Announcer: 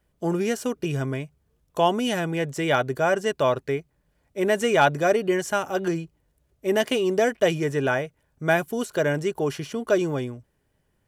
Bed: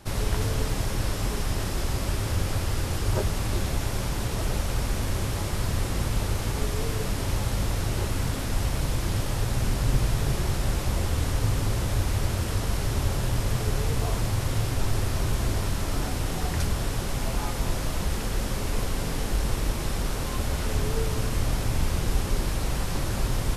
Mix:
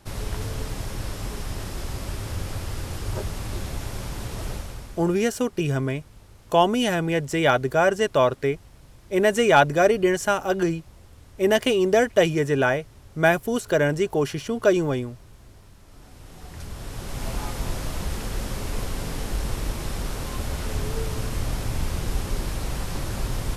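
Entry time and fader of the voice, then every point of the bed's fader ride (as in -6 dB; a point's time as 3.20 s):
4.75 s, +2.5 dB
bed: 4.51 s -4 dB
5.29 s -23 dB
15.82 s -23 dB
17.28 s -1.5 dB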